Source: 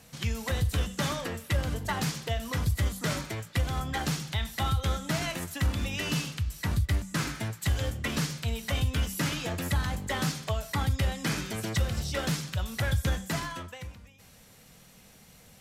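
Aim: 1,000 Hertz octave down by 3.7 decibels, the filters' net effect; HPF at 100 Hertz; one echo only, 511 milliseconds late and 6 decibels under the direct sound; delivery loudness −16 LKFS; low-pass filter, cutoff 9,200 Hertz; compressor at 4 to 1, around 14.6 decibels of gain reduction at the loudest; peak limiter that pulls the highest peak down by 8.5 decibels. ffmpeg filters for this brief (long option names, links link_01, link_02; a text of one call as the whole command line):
ffmpeg -i in.wav -af "highpass=100,lowpass=9200,equalizer=frequency=1000:width_type=o:gain=-5,acompressor=threshold=-44dB:ratio=4,alimiter=level_in=11.5dB:limit=-24dB:level=0:latency=1,volume=-11.5dB,aecho=1:1:511:0.501,volume=30dB" out.wav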